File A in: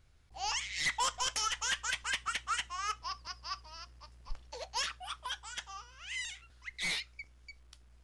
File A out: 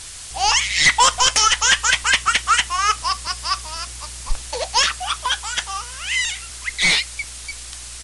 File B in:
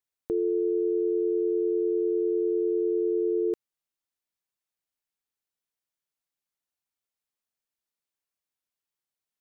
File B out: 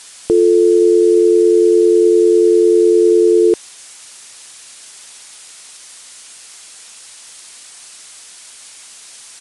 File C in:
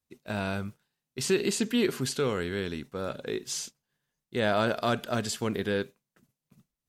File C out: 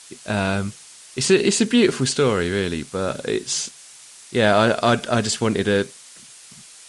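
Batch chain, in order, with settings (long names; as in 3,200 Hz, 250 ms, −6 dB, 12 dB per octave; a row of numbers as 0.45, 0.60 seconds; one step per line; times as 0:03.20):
background noise blue −48 dBFS
downsampling to 22,050 Hz
MP3 56 kbit/s 44,100 Hz
normalise the peak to −3 dBFS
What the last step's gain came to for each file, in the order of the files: +18.5, +16.0, +10.0 decibels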